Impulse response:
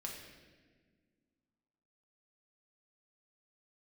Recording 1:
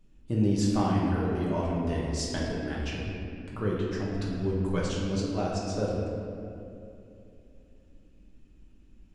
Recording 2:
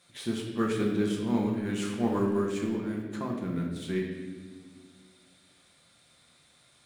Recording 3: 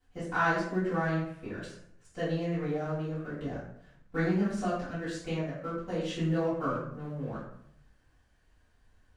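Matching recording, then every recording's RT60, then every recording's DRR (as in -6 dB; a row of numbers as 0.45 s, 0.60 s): 2; 2.7 s, 1.6 s, 0.70 s; -6.0 dB, -1.5 dB, -15.0 dB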